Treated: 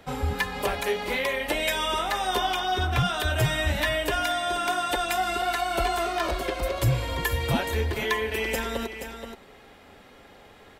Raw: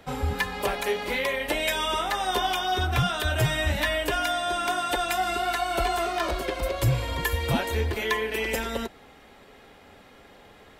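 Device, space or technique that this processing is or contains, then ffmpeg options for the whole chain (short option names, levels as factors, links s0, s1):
ducked delay: -filter_complex "[0:a]asplit=3[s0][s1][s2];[s1]adelay=477,volume=0.355[s3];[s2]apad=whole_len=497306[s4];[s3][s4]sidechaincompress=threshold=0.0316:ratio=8:attack=6:release=162[s5];[s0][s5]amix=inputs=2:normalize=0,asettb=1/sr,asplit=3[s6][s7][s8];[s6]atrim=end=2.444[s9];[s7]atrim=start=2.44:end=3.05,asetpts=PTS-STARTPTS,afade=t=in:d=0.004:c=qsin,afade=t=out:st=0.606:d=0.004:c=qsin,highshelf=f=8100:g=-5.5[s10];[s8]atrim=start=3.046[s11];[s9][s10]acrossfade=d=0.004:c1=hsin:c2=qsin[s12];[s12][s11]acrossfade=d=0.004:c1=qsin:c2=hsin"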